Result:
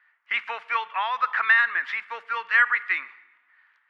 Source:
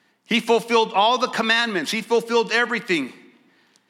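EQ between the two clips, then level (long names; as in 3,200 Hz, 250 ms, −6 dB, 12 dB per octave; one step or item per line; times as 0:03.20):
flat-topped band-pass 1,600 Hz, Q 1.7
+3.5 dB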